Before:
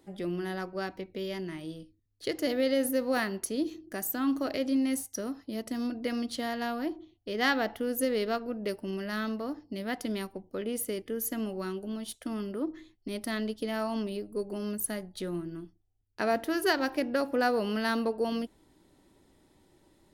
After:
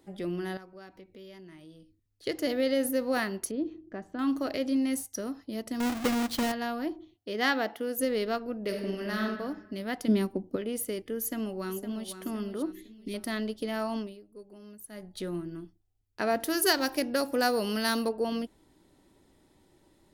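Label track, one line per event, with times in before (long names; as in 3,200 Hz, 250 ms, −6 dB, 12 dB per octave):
0.570000	2.260000	downward compressor 2 to 1, threshold −56 dBFS
3.510000	4.190000	head-to-tape spacing loss at 10 kHz 39 dB
5.800000	6.520000	each half-wave held at its own peak
7.150000	7.960000	high-pass filter 120 Hz → 280 Hz
8.620000	9.210000	thrown reverb, RT60 1.2 s, DRR 1 dB
10.080000	10.560000	parametric band 260 Hz +12 dB 1.6 octaves
11.180000	12.110000	delay throw 510 ms, feedback 45%, level −10.5 dB
12.720000	13.140000	flat-topped bell 960 Hz −12.5 dB
13.950000	15.110000	duck −14.5 dB, fades 0.21 s
16.400000	18.090000	bass and treble bass 0 dB, treble +12 dB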